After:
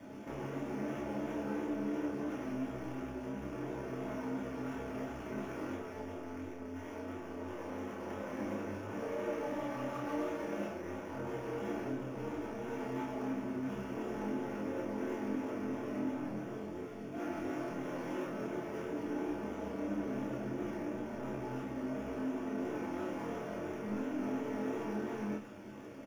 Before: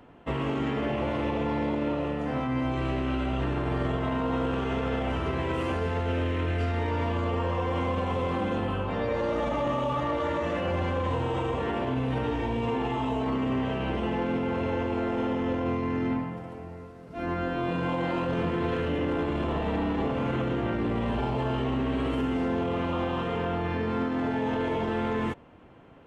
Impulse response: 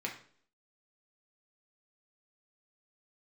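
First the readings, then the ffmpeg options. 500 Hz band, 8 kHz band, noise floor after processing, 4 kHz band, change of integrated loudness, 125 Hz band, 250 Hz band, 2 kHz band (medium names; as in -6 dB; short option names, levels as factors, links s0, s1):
-10.5 dB, no reading, -45 dBFS, -16.0 dB, -11.0 dB, -16.5 dB, -8.5 dB, -11.5 dB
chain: -filter_complex "[0:a]bass=f=250:g=8,treble=f=4000:g=-5,alimiter=limit=0.0631:level=0:latency=1:release=17,aresample=16000,asoftclip=type=tanh:threshold=0.0112,aresample=44100,acrusher=bits=8:mix=0:aa=0.000001,acrossover=split=1700[s0][s1];[s0]adynamicsmooth=sensitivity=5.5:basefreq=960[s2];[s1]acrusher=samples=11:mix=1:aa=0.000001[s3];[s2][s3]amix=inputs=2:normalize=0,flanger=delay=16.5:depth=7.2:speed=2.9,asplit=2[s4][s5];[s5]adelay=30,volume=0.631[s6];[s4][s6]amix=inputs=2:normalize=0[s7];[1:a]atrim=start_sample=2205,asetrate=74970,aresample=44100[s8];[s7][s8]afir=irnorm=-1:irlink=0,volume=2.24" -ar 48000 -c:a libopus -b:a 256k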